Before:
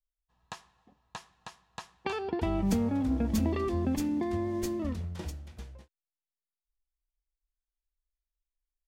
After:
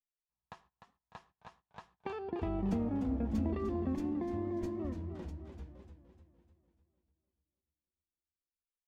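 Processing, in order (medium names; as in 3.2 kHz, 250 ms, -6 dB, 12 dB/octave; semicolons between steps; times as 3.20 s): low-pass 1.2 kHz 6 dB/octave; gate -58 dBFS, range -19 dB; modulated delay 297 ms, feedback 48%, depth 117 cents, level -9 dB; trim -5.5 dB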